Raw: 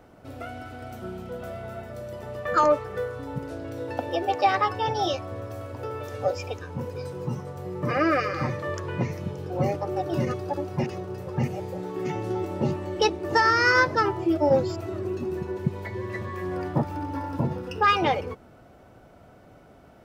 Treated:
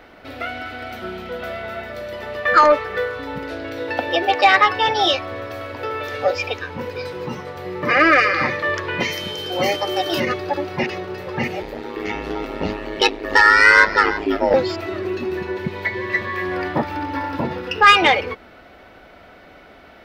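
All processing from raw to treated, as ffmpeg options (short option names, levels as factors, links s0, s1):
-filter_complex "[0:a]asettb=1/sr,asplit=3[s0][s1][s2];[s0]atrim=end=9.004[s3];[s1]atrim=start=9:end=10.2,asetpts=PTS-STARTPTS,afade=t=in:d=0.004:c=qsin,afade=t=out:st=1.196:d=0.004:c=qsin,bass=f=250:g=-4,treble=f=4000:g=14,aeval=exprs='val(0)+0.00631*sin(2*PI*3100*n/s)':c=same[s4];[s2]atrim=start=10.196[s5];[s3][s4]acrossfade=d=0.004:c1=hsin:c2=qsin[s6];[s6][s5]acrossfade=d=0.004:c1=qsin:c2=hsin,asettb=1/sr,asplit=3[s7][s8][s9];[s7]atrim=end=11.624[s10];[s8]atrim=start=11.62:end=14.54,asetpts=PTS-STARTPTS,afade=t=in:d=0.004:c=qsin,afade=t=out:st=2.916:d=0.004:c=qsin,asoftclip=type=hard:threshold=0.237,aeval=exprs='val(0)*sin(2*PI*52*n/s)':c=same,aecho=1:1:337:0.158,atrim=end_sample=128772[s11];[s9]atrim=start=14.536[s12];[s10][s11]acrossfade=d=0.004:c1=hsin:c2=qsin[s13];[s13][s12]acrossfade=d=0.004:c1=qsin:c2=hsin,equalizer=f=125:t=o:w=1:g=-12,equalizer=f=2000:t=o:w=1:g=10,equalizer=f=4000:t=o:w=1:g=9,equalizer=f=8000:t=o:w=1:g=-9,acontrast=63"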